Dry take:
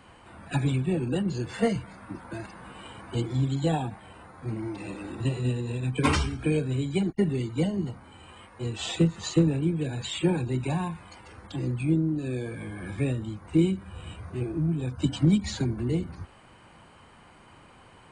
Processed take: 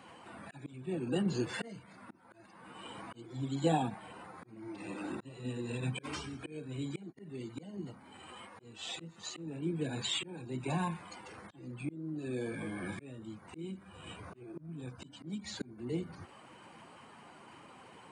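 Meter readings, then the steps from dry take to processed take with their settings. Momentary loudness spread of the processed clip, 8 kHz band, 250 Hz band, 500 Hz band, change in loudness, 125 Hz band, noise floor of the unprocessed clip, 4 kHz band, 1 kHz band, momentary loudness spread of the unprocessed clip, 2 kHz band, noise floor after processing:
20 LU, −7.0 dB, −11.5 dB, −9.5 dB, −11.5 dB, −14.5 dB, −53 dBFS, −5.5 dB, −5.5 dB, 16 LU, −7.5 dB, −58 dBFS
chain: spectral magnitudes quantised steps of 15 dB
volume swells 718 ms
high-pass filter 170 Hz 12 dB per octave

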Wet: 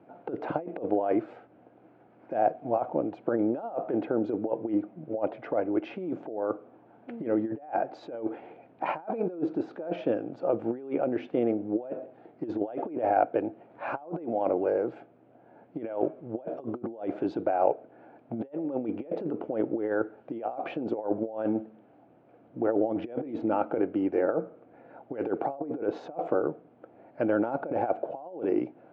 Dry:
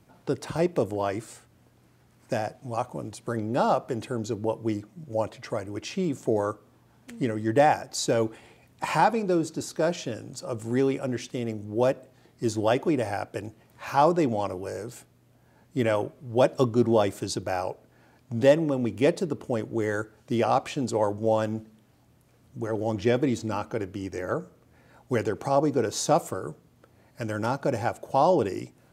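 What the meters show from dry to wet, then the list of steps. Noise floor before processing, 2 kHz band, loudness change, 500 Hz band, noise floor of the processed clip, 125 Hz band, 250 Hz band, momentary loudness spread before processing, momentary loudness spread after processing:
−61 dBFS, −7.5 dB, −3.5 dB, −3.0 dB, −58 dBFS, −12.5 dB, −2.0 dB, 13 LU, 10 LU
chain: compressor whose output falls as the input rises −30 dBFS, ratio −0.5
loudspeaker in its box 250–2,100 Hz, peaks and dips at 310 Hz +6 dB, 500 Hz +4 dB, 710 Hz +8 dB, 1,100 Hz −6 dB, 1,900 Hz −9 dB

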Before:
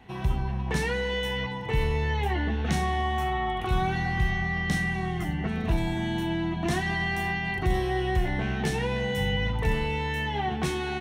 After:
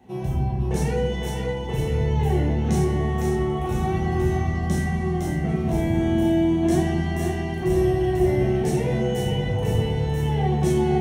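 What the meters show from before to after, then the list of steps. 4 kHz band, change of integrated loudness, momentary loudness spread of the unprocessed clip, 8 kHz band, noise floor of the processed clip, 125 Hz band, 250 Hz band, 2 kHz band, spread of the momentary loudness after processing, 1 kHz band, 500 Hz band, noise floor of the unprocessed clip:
−3.0 dB, +5.0 dB, 3 LU, +4.5 dB, −28 dBFS, +6.5 dB, +8.0 dB, −6.0 dB, 5 LU, −0.5 dB, +8.0 dB, −32 dBFS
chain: high-pass filter 93 Hz 12 dB per octave
flat-topped bell 2,100 Hz −10.5 dB 2.6 octaves
echo with a time of its own for lows and highs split 300 Hz, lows 218 ms, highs 509 ms, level −5 dB
rectangular room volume 90 cubic metres, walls mixed, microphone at 1.1 metres

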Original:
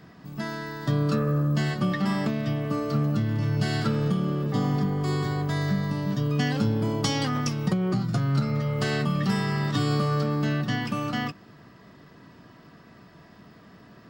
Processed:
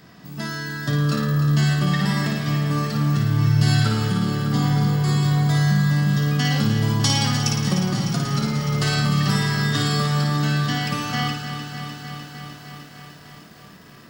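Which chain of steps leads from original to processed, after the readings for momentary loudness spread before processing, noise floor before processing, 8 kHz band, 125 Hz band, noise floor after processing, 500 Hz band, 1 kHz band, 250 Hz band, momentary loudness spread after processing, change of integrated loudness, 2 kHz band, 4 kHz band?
4 LU, −52 dBFS, +11.5 dB, +6.5 dB, −45 dBFS, −1.0 dB, +4.5 dB, +3.5 dB, 13 LU, +5.5 dB, +7.0 dB, +9.5 dB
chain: high-shelf EQ 2,900 Hz +10 dB
flutter between parallel walls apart 9.5 metres, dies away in 0.72 s
feedback echo at a low word length 302 ms, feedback 80%, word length 8 bits, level −10 dB

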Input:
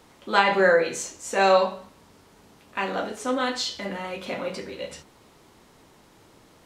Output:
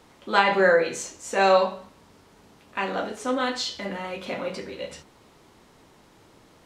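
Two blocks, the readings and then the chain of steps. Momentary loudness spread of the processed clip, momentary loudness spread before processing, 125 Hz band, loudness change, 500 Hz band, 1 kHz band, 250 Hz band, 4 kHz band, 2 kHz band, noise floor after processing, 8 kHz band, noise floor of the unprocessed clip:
16 LU, 16 LU, 0.0 dB, 0.0 dB, 0.0 dB, 0.0 dB, 0.0 dB, −0.5 dB, 0.0 dB, −56 dBFS, −1.5 dB, −55 dBFS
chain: high-shelf EQ 8,900 Hz −5 dB

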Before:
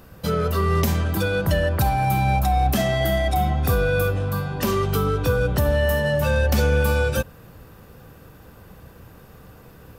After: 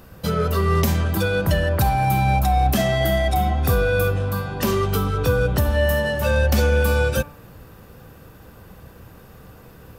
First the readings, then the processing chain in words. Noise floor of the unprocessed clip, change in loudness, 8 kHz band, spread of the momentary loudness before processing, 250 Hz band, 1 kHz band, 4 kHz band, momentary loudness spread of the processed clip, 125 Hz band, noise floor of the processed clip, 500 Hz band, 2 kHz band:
−47 dBFS, +1.0 dB, +1.5 dB, 4 LU, +1.0 dB, +1.0 dB, +1.5 dB, 4 LU, +1.0 dB, −46 dBFS, +1.0 dB, +1.5 dB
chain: hum removal 146 Hz, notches 17
level +1.5 dB

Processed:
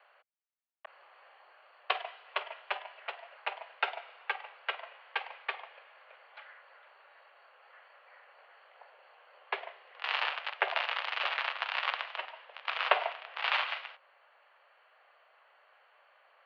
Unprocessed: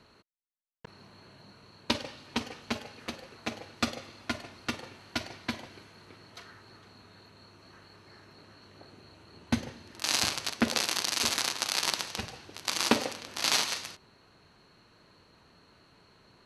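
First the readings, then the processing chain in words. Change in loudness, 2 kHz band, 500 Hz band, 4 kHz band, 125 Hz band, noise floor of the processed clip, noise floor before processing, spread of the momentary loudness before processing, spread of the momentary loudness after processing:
−3.5 dB, +2.0 dB, −2.5 dB, −6.5 dB, below −40 dB, −66 dBFS, −62 dBFS, 15 LU, 17 LU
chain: in parallel at −11 dB: bit-depth reduction 6 bits, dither none
on the sum: single-sideband voice off tune +160 Hz 440–2,900 Hz

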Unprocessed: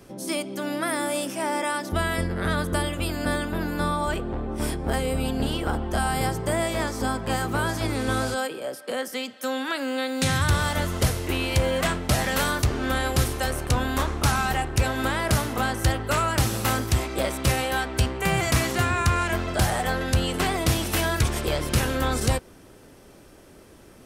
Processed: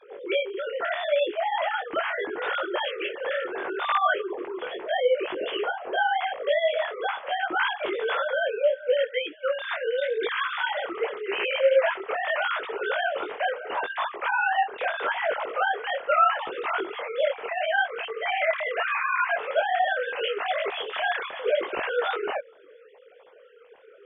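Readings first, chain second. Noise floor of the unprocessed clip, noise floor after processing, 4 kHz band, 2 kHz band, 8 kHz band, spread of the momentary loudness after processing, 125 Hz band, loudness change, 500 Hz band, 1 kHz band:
−49 dBFS, −52 dBFS, −3.0 dB, +1.5 dB, below −40 dB, 6 LU, below −40 dB, −1.5 dB, +3.0 dB, +1.0 dB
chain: three sine waves on the formant tracks
micro pitch shift up and down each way 27 cents
level +1.5 dB

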